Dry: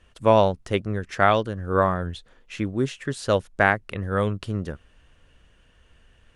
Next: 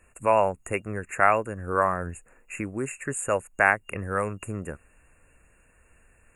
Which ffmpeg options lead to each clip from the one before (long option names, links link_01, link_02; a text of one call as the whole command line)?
ffmpeg -i in.wav -filter_complex "[0:a]afftfilt=real='re*(1-between(b*sr/4096,2800,6700))':imag='im*(1-between(b*sr/4096,2800,6700))':win_size=4096:overlap=0.75,bass=frequency=250:gain=-4,treble=frequency=4000:gain=10,acrossover=split=640[link_01][link_02];[link_01]alimiter=limit=-23dB:level=0:latency=1:release=275[link_03];[link_03][link_02]amix=inputs=2:normalize=0" out.wav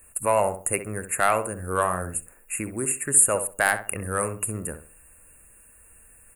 ffmpeg -i in.wav -filter_complex "[0:a]asoftclip=type=tanh:threshold=-9dB,asplit=2[link_01][link_02];[link_02]adelay=65,lowpass=frequency=1800:poles=1,volume=-9dB,asplit=2[link_03][link_04];[link_04]adelay=65,lowpass=frequency=1800:poles=1,volume=0.31,asplit=2[link_05][link_06];[link_06]adelay=65,lowpass=frequency=1800:poles=1,volume=0.31,asplit=2[link_07][link_08];[link_08]adelay=65,lowpass=frequency=1800:poles=1,volume=0.31[link_09];[link_01][link_03][link_05][link_07][link_09]amix=inputs=5:normalize=0,aexciter=amount=13.3:drive=6.3:freq=8600" out.wav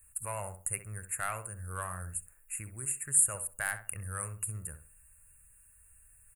ffmpeg -i in.wav -af "firequalizer=gain_entry='entry(120,0);entry(240,-18);entry(1500,-6);entry(4100,-11);entry(7700,-2)':delay=0.05:min_phase=1,volume=-5.5dB" out.wav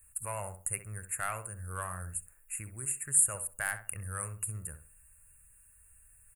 ffmpeg -i in.wav -af "bandreject=frequency=3900:width=11" out.wav